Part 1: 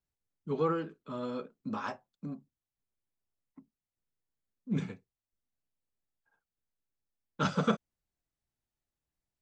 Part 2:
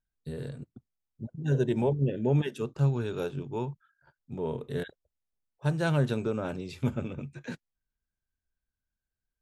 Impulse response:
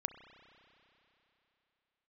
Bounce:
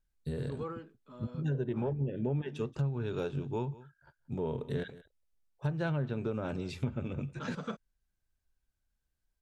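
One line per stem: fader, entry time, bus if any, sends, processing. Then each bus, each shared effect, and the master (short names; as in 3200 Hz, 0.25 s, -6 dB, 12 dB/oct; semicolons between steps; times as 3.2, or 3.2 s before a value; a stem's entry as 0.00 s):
-3.0 dB, 0.00 s, no send, no echo send, auto duck -9 dB, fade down 0.85 s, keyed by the second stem
+0.5 dB, 0.00 s, no send, echo send -22 dB, low shelf 72 Hz +9 dB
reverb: off
echo: echo 0.179 s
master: treble ducked by the level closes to 2600 Hz, closed at -21 dBFS; compressor 5:1, threshold -30 dBFS, peak gain reduction 10.5 dB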